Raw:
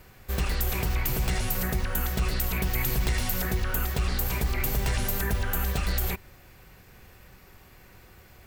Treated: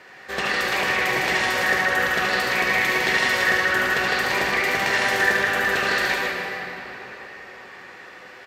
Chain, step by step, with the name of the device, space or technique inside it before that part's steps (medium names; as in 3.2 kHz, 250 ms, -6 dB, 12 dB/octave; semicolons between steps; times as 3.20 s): station announcement (band-pass 390–4800 Hz; peaking EQ 1.8 kHz +10 dB 0.24 oct; loudspeakers at several distances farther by 25 m -5 dB, 54 m -4 dB; reverberation RT60 4.2 s, pre-delay 52 ms, DRR 1.5 dB); trim +8 dB